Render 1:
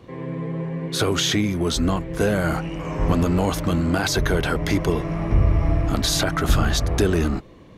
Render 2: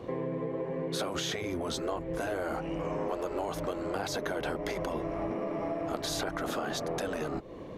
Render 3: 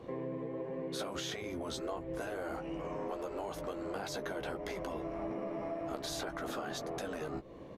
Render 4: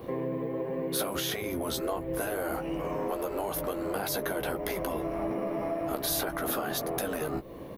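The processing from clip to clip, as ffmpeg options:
-af "afftfilt=real='re*lt(hypot(re,im),0.447)':imag='im*lt(hypot(re,im),0.447)':win_size=1024:overlap=0.75,equalizer=f=540:w=0.64:g=10.5,acompressor=threshold=-29dB:ratio=5,volume=-2.5dB"
-filter_complex "[0:a]asplit=2[a][b];[b]adelay=15,volume=-8dB[c];[a][c]amix=inputs=2:normalize=0,volume=-6.5dB"
-af "aexciter=amount=5.8:drive=7.9:freq=10k,volume=7dB"

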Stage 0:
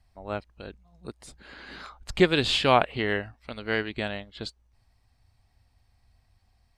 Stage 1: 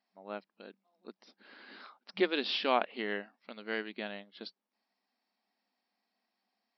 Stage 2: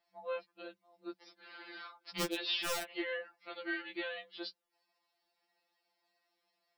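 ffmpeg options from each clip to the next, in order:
-af "afftfilt=real='re*between(b*sr/4096,190,5800)':imag='im*between(b*sr/4096,190,5800)':win_size=4096:overlap=0.75,volume=-8.5dB"
-af "aeval=exprs='(mod(10.6*val(0)+1,2)-1)/10.6':c=same,acompressor=threshold=-35dB:ratio=8,afftfilt=real='re*2.83*eq(mod(b,8),0)':imag='im*2.83*eq(mod(b,8),0)':win_size=2048:overlap=0.75,volume=5.5dB"

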